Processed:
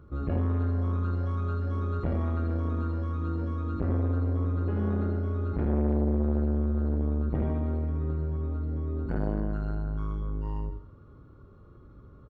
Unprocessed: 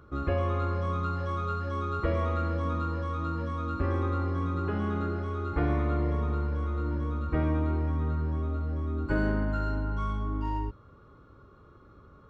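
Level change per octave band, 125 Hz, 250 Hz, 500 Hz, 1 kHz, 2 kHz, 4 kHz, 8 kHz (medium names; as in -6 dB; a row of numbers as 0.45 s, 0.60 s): +2.0 dB, +1.5 dB, -1.5 dB, -8.0 dB, -9.5 dB, under -10 dB, no reading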